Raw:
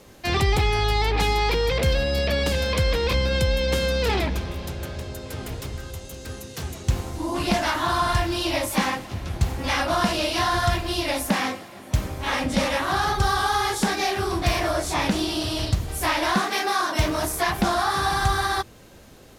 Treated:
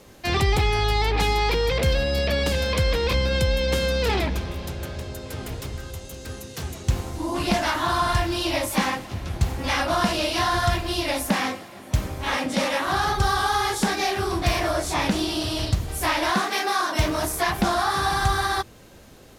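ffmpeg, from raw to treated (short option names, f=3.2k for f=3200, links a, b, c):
-filter_complex "[0:a]asettb=1/sr,asplit=3[a][b][c];[a]atrim=end=12.374[d];[b]atrim=start=12.37:end=12.86,asetpts=PTS-STARTPTS,afade=t=in:d=0.004:c=qsin,afade=t=out:st=0.486:d=0.004:c=qsin,highpass=190[e];[c]atrim=start=12.856[f];[d][e]acrossfade=d=0.004:c1=hsin:c2=qsin[g];[g][f]acrossfade=d=0.004:c1=qsin:c2=hsin,asettb=1/sr,asplit=3[h][i][j];[h]atrim=end=16.304[k];[i]atrim=start=16.3:end=16.93,asetpts=PTS-STARTPTS,afade=t=in:d=0.004:c=qsin,afade=t=out:st=0.626:d=0.004:c=qsin,lowshelf=f=97:g=-11[l];[j]atrim=start=16.926[m];[k][l]acrossfade=d=0.004:c1=hsin:c2=qsin[n];[n][m]acrossfade=d=0.004:c1=qsin:c2=hsin"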